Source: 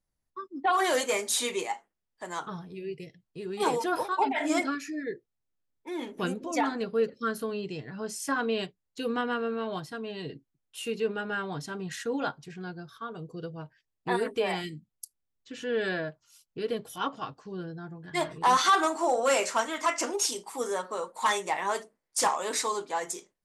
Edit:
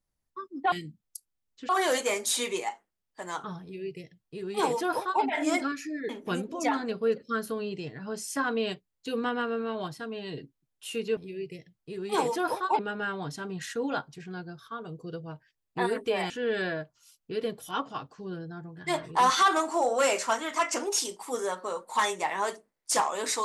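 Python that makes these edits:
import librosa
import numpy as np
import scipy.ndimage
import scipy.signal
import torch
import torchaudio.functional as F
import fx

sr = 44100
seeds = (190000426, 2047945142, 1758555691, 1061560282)

y = fx.edit(x, sr, fx.duplicate(start_s=2.65, length_s=1.62, to_s=11.09),
    fx.cut(start_s=5.12, length_s=0.89),
    fx.move(start_s=14.6, length_s=0.97, to_s=0.72), tone=tone)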